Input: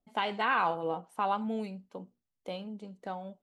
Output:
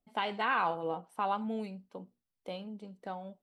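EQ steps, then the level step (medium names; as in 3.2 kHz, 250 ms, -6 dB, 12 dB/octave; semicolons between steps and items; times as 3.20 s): band-stop 6.8 kHz, Q 6.8; -2.0 dB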